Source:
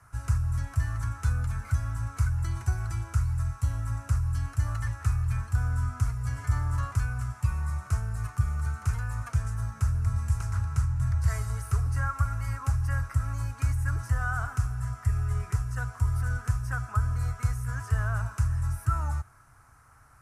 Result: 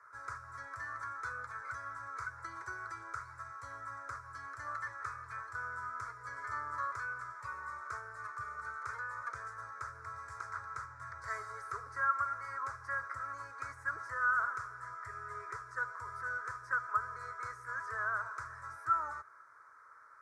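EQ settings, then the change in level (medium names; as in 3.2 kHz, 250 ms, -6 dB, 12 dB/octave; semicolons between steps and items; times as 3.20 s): band-pass 600–3100 Hz; static phaser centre 760 Hz, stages 6; +3.5 dB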